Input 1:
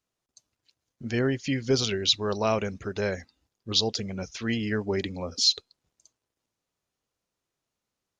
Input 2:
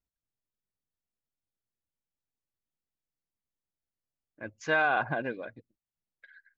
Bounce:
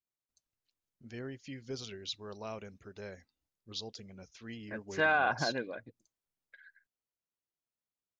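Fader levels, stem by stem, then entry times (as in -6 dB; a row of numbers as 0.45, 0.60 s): -17.0, -2.0 dB; 0.00, 0.30 s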